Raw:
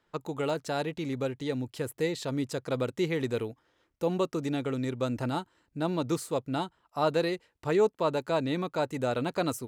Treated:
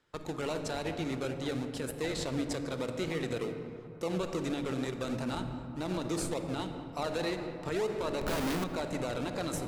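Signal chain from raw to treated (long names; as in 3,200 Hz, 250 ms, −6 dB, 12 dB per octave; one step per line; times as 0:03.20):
high-pass filter 100 Hz 24 dB per octave
spectral tilt +2 dB per octave
in parallel at −3.5 dB: sample-and-hold swept by an LFO 37×, swing 60% 3.4 Hz
on the sum: hard clipping −14.5 dBFS, distortion −31 dB
low-pass filter 9,700 Hz 12 dB per octave
0:08.21–0:08.64: comparator with hysteresis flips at −43 dBFS
on a send at −10.5 dB: low-shelf EQ 410 Hz +6 dB + convolution reverb RT60 2.0 s, pre-delay 20 ms
on the sum: brickwall limiter −21 dBFS, peak gain reduction 8.5 dB
feedback echo with a band-pass in the loop 204 ms, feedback 80%, band-pass 890 Hz, level −14.5 dB
level −3 dB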